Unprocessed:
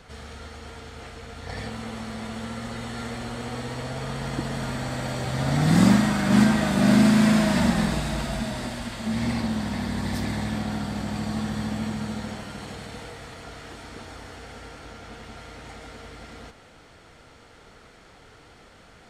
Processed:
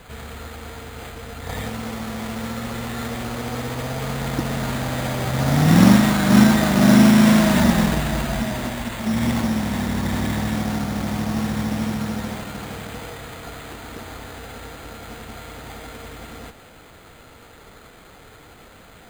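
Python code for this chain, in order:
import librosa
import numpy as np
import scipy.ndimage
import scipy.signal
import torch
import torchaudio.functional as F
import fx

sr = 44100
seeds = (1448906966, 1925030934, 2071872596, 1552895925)

y = np.repeat(x[::8], 8)[:len(x)]
y = y * 10.0 ** (5.0 / 20.0)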